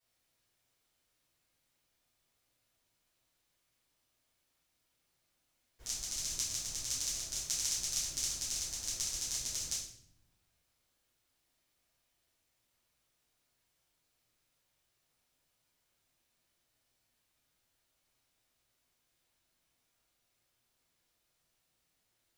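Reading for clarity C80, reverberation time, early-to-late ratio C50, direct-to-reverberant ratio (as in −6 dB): 7.0 dB, 0.65 s, 3.5 dB, −11.0 dB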